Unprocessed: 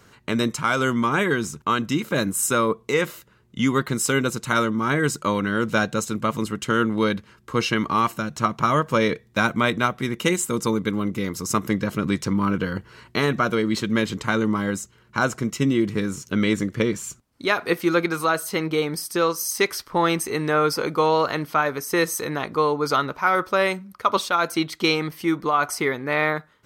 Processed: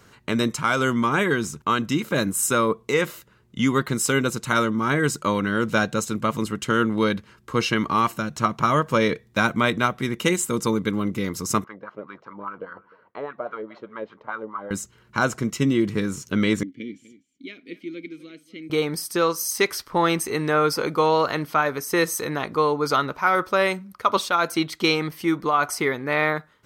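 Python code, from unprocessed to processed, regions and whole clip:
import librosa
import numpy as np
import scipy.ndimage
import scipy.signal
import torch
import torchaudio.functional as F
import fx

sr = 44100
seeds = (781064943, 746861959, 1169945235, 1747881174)

y = fx.chain(x, sr, fx.moving_average(points=5),
    fx.wah_lfo(hz=4.9, low_hz=530.0, high_hz=1300.0, q=3.7),
    fx.echo_single(ms=304, db=-21.5), at=(11.64, 14.71))
y = fx.chain(y, sr, fx.vowel_filter(vowel='i'),
    fx.peak_eq(hz=1400.0, db=-10.0, octaves=1.2),
    fx.echo_single(ms=248, db=-16.5), at=(16.63, 18.7))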